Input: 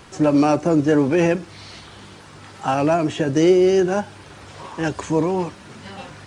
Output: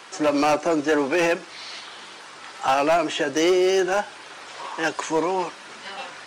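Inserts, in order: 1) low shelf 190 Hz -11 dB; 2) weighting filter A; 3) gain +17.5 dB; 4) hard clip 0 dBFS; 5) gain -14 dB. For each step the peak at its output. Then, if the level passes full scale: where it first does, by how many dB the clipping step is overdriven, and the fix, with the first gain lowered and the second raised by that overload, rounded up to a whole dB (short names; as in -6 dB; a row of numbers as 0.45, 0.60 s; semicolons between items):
-7.5, -9.5, +8.0, 0.0, -14.0 dBFS; step 3, 8.0 dB; step 3 +9.5 dB, step 5 -6 dB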